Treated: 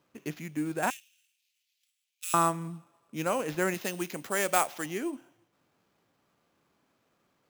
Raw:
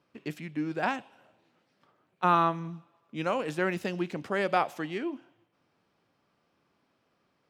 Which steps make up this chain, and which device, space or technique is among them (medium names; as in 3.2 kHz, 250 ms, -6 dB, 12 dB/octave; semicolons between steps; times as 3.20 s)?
early companding sampler (sample-rate reducer 9 kHz, jitter 0%; companded quantiser 8-bit); 0.90–2.34 s: steep high-pass 2.5 kHz 36 dB/octave; 3.74–4.86 s: tilt EQ +2 dB/octave